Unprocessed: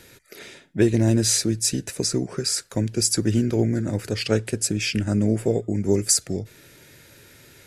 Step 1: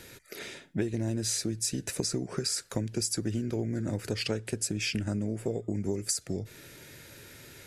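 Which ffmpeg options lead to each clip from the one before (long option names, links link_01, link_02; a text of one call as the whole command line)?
ffmpeg -i in.wav -af "acompressor=threshold=-27dB:ratio=10" out.wav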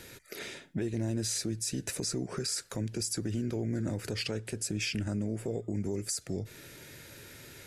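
ffmpeg -i in.wav -af "alimiter=limit=-23.5dB:level=0:latency=1:release=25" out.wav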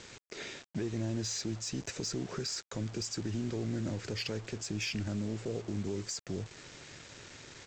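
ffmpeg -i in.wav -af "aresample=16000,acrusher=bits=7:mix=0:aa=0.000001,aresample=44100,aeval=exprs='0.075*(cos(1*acos(clip(val(0)/0.075,-1,1)))-cos(1*PI/2))+0.00237*(cos(5*acos(clip(val(0)/0.075,-1,1)))-cos(5*PI/2))':channel_layout=same,volume=-2.5dB" out.wav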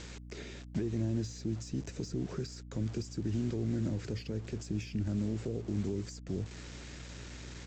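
ffmpeg -i in.wav -filter_complex "[0:a]acrossover=split=410[link_01][link_02];[link_02]acompressor=threshold=-50dB:ratio=10[link_03];[link_01][link_03]amix=inputs=2:normalize=0,aeval=exprs='val(0)+0.00355*(sin(2*PI*60*n/s)+sin(2*PI*2*60*n/s)/2+sin(2*PI*3*60*n/s)/3+sin(2*PI*4*60*n/s)/4+sin(2*PI*5*60*n/s)/5)':channel_layout=same,volume=2.5dB" out.wav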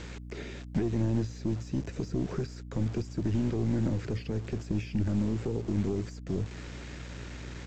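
ffmpeg -i in.wav -filter_complex "[0:a]aeval=exprs='0.0708*(cos(1*acos(clip(val(0)/0.0708,-1,1)))-cos(1*PI/2))+0.00631*(cos(4*acos(clip(val(0)/0.0708,-1,1)))-cos(4*PI/2))':channel_layout=same,acrossover=split=3100[link_01][link_02];[link_02]acompressor=threshold=-59dB:ratio=4:attack=1:release=60[link_03];[link_01][link_03]amix=inputs=2:normalize=0,volume=5dB" out.wav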